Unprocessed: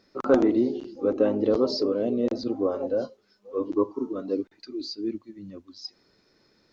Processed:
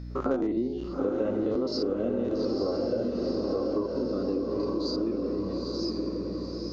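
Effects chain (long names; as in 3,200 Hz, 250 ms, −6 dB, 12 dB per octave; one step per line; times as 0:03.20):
spectrum averaged block by block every 50 ms
low-shelf EQ 91 Hz +9.5 dB
mains hum 60 Hz, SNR 15 dB
on a send: feedback delay with all-pass diffusion 911 ms, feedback 51%, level −4 dB
on the sum: downward compressor 6 to 1, threshold −29 dBFS, peak gain reduction 13.5 dB
level +4 dB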